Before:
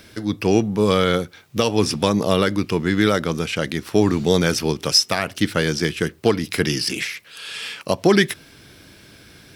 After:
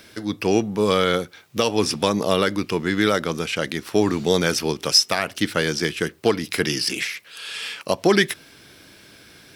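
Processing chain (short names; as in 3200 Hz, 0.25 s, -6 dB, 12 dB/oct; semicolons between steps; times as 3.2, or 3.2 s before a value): low shelf 180 Hz -9 dB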